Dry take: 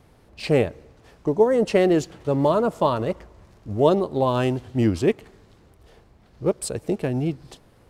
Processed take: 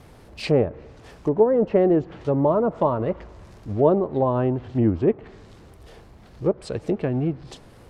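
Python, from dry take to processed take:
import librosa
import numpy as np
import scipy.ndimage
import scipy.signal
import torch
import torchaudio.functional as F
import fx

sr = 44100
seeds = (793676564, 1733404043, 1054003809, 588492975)

y = fx.law_mismatch(x, sr, coded='mu')
y = fx.env_lowpass_down(y, sr, base_hz=1100.0, full_db=-17.5)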